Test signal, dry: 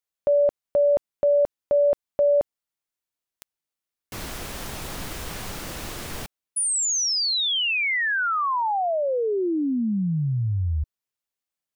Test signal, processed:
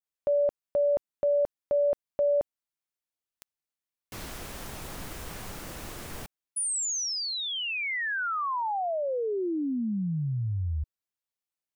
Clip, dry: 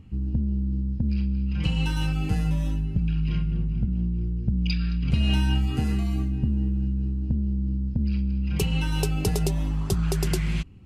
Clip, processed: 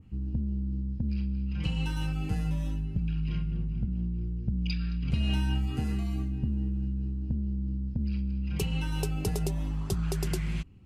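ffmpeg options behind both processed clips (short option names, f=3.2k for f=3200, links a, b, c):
-af "adynamicequalizer=threshold=0.00794:dfrequency=3900:dqfactor=0.83:tfrequency=3900:tqfactor=0.83:attack=5:release=100:ratio=0.375:range=2:mode=cutabove:tftype=bell,volume=-5.5dB"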